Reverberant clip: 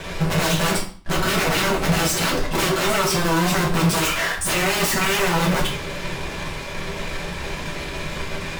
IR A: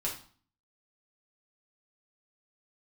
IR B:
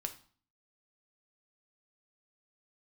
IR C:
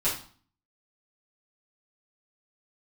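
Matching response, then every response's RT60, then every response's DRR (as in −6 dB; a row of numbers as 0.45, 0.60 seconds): A; 0.45, 0.45, 0.45 seconds; −4.5, 5.5, −11.0 decibels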